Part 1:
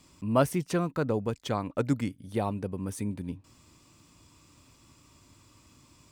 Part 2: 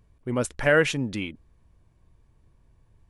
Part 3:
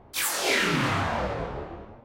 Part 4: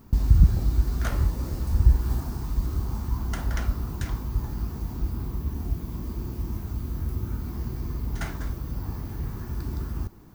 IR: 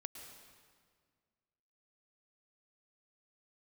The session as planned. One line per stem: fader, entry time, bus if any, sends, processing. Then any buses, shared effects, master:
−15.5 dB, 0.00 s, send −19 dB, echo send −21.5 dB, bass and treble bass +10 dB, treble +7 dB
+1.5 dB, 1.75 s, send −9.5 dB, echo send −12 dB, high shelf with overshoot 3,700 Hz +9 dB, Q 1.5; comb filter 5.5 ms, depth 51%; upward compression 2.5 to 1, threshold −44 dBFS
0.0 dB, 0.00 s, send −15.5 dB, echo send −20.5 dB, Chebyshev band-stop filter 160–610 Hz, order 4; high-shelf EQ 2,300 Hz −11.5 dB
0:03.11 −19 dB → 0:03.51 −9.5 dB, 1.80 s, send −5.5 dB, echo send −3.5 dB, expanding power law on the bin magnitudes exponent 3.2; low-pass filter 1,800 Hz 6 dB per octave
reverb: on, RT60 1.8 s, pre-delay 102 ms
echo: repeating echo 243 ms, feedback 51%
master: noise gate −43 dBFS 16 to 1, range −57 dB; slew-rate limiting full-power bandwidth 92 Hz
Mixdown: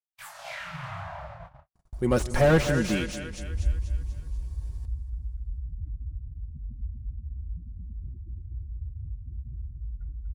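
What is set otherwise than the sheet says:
stem 1: muted
stem 3 0.0 dB → −9.0 dB

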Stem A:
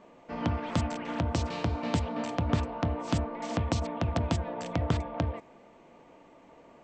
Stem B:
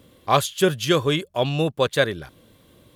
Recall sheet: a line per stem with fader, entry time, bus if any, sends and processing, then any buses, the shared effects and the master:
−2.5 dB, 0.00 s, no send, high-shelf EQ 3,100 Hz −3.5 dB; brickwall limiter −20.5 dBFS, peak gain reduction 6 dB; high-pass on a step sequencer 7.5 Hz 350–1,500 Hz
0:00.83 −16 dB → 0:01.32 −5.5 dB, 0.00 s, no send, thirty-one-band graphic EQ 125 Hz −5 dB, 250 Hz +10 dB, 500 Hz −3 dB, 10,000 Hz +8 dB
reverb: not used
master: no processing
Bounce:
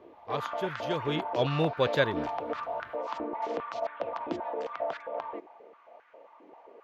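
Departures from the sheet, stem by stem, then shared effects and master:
stem B: missing thirty-one-band graphic EQ 125 Hz −5 dB, 250 Hz +10 dB, 500 Hz −3 dB, 10,000 Hz +8 dB
master: extra moving average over 5 samples

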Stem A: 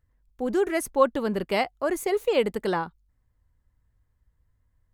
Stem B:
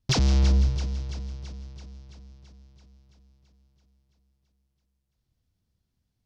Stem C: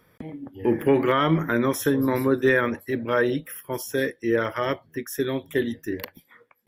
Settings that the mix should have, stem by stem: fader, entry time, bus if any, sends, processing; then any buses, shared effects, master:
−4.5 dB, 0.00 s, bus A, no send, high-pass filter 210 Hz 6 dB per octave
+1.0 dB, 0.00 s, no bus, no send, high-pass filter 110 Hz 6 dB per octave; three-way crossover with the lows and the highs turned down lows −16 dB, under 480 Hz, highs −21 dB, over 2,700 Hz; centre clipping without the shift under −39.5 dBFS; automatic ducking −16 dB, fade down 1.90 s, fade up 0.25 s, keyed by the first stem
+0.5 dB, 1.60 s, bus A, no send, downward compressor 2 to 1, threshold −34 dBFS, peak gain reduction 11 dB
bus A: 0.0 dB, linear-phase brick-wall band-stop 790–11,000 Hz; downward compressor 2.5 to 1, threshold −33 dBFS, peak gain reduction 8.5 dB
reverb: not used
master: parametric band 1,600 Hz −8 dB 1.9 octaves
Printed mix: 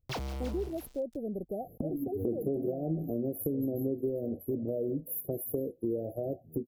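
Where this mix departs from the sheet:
stem A: missing high-pass filter 210 Hz 6 dB per octave
stem B: missing high-pass filter 110 Hz 6 dB per octave
stem C +0.5 dB → +9.5 dB

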